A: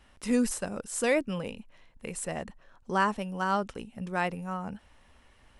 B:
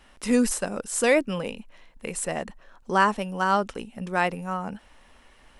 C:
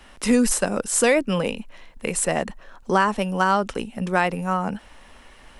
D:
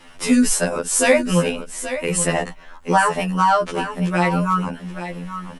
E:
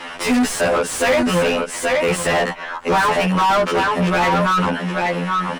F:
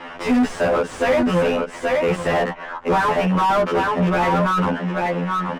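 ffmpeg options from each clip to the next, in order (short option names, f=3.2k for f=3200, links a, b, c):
-af "equalizer=f=92:t=o:w=1.3:g=-10.5,volume=6dB"
-filter_complex "[0:a]acrossover=split=120[a][b];[b]acompressor=threshold=-22dB:ratio=4[c];[a][c]amix=inputs=2:normalize=0,volume=7dB"
-af "aecho=1:1:828:0.282,afftfilt=real='re*2*eq(mod(b,4),0)':imag='im*2*eq(mod(b,4),0)':win_size=2048:overlap=0.75,volume=5.5dB"
-filter_complex "[0:a]asplit=2[a][b];[b]highpass=f=720:p=1,volume=33dB,asoftclip=type=tanh:threshold=-2dB[c];[a][c]amix=inputs=2:normalize=0,lowpass=f=2k:p=1,volume=-6dB,volume=-6.5dB"
-af "highshelf=f=2.1k:g=-10,adynamicsmooth=sensitivity=7:basefreq=4.6k,bandreject=f=4.2k:w=27"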